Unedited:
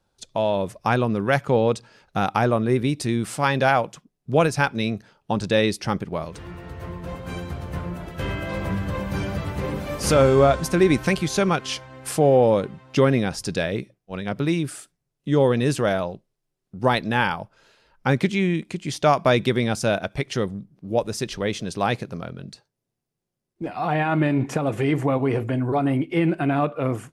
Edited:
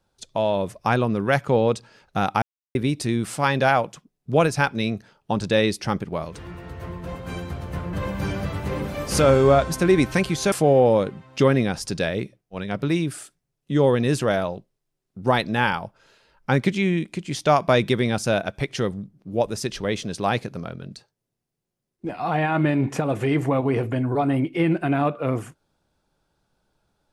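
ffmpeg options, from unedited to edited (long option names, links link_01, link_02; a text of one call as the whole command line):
ffmpeg -i in.wav -filter_complex "[0:a]asplit=5[link_01][link_02][link_03][link_04][link_05];[link_01]atrim=end=2.42,asetpts=PTS-STARTPTS,afade=type=out:start_time=2.416:duration=0.004:curve=hsin[link_06];[link_02]atrim=start=2.42:end=2.75,asetpts=PTS-STARTPTS,volume=0[link_07];[link_03]atrim=start=2.75:end=7.932,asetpts=PTS-STARTPTS,afade=type=in:duration=0.004:curve=hsin[link_08];[link_04]atrim=start=8.848:end=11.442[link_09];[link_05]atrim=start=12.088[link_10];[link_06][link_07][link_08]concat=n=3:v=0:a=1[link_11];[link_11][link_09]acrossfade=duration=0.004:curve1=hsin:curve2=hsin[link_12];[link_12][link_10]acrossfade=duration=0.004:curve1=hsin:curve2=hsin" out.wav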